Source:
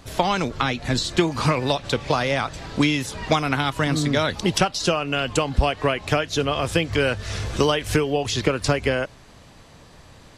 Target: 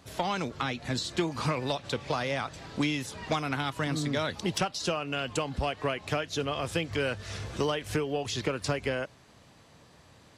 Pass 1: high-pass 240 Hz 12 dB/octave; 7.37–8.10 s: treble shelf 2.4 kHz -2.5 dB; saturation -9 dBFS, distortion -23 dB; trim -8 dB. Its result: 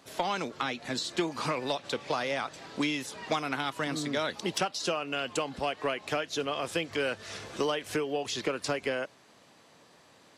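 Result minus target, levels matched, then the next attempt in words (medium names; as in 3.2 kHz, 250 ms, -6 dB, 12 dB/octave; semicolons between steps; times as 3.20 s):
125 Hz band -8.0 dB
high-pass 78 Hz 12 dB/octave; 7.37–8.10 s: treble shelf 2.4 kHz -2.5 dB; saturation -9 dBFS, distortion -21 dB; trim -8 dB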